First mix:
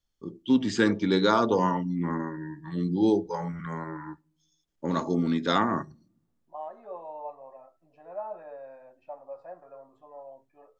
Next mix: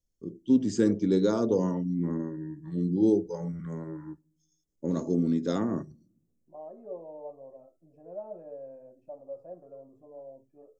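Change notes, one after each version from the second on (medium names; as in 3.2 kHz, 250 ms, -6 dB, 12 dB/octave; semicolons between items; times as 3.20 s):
second voice: add tilt shelf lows +7.5 dB, about 870 Hz; master: add high-order bell 1.8 kHz -15 dB 2.8 oct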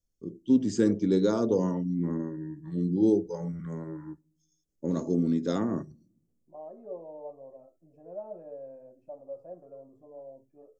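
no change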